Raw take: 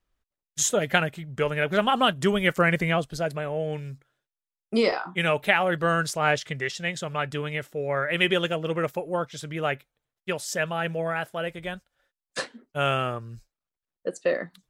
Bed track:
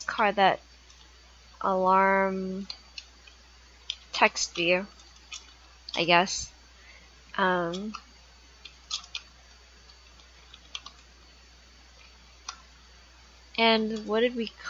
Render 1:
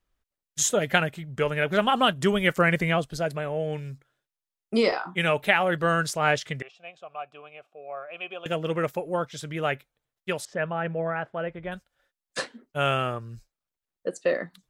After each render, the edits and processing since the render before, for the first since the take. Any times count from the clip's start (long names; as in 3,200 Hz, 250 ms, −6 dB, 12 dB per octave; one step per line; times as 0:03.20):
0:06.62–0:08.46: formant filter a
0:10.45–0:11.72: low-pass filter 1,700 Hz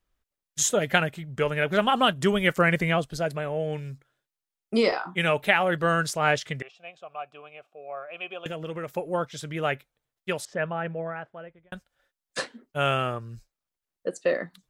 0:08.48–0:08.97: downward compressor 2.5 to 1, threshold −33 dBFS
0:10.63–0:11.72: fade out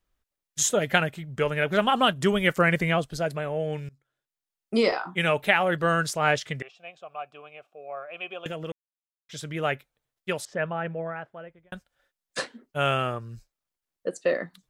0:03.89–0:04.88: fade in equal-power, from −23.5 dB
0:08.72–0:09.29: silence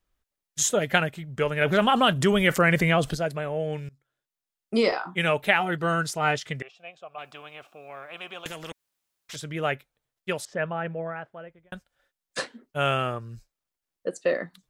0:01.61–0:03.15: envelope flattener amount 50%
0:05.60–0:06.45: notch comb filter 560 Hz
0:07.18–0:09.36: every bin compressed towards the loudest bin 2 to 1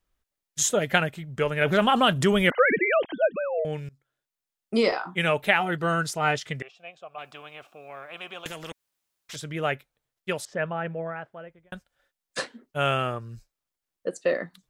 0:02.50–0:03.65: three sine waves on the formant tracks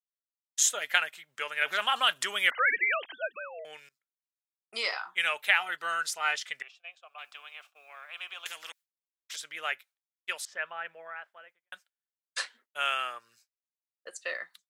downward expander −45 dBFS
high-pass filter 1,400 Hz 12 dB per octave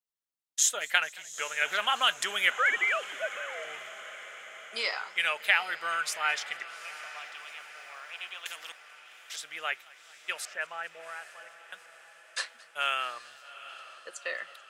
feedback delay with all-pass diffusion 808 ms, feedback 61%, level −15 dB
feedback echo with a swinging delay time 218 ms, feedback 77%, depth 141 cents, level −23.5 dB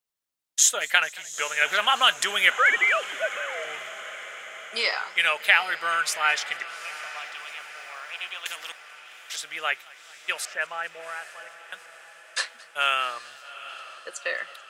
level +6 dB
brickwall limiter −3 dBFS, peak gain reduction 2 dB